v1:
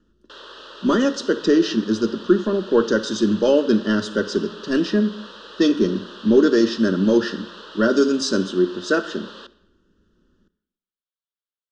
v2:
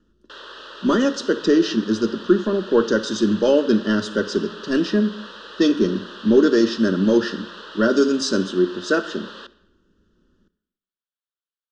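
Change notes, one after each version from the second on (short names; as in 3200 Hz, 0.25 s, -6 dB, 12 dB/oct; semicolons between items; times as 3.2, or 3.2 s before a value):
background: add bell 1800 Hz +4.5 dB 1 oct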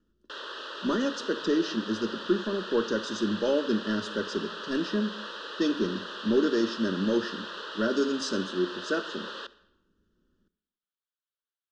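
speech -9.5 dB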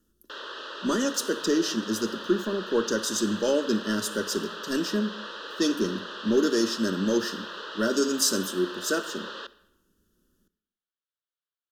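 speech: remove air absorption 200 m; master: remove elliptic low-pass 9200 Hz, stop band 80 dB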